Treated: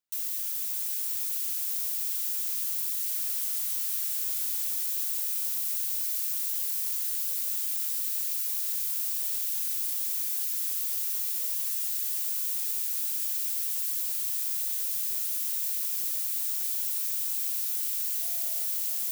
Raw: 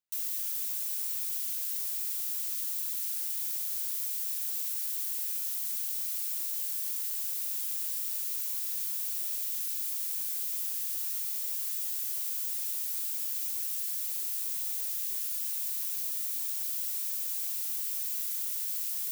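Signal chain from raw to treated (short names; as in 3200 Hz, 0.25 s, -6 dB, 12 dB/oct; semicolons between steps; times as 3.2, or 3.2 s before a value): 18.2–18.64 whine 670 Hz -53 dBFS; diffused feedback echo 0.603 s, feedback 76%, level -6.5 dB; 3.11–4.83 frequency shift -340 Hz; gain +1.5 dB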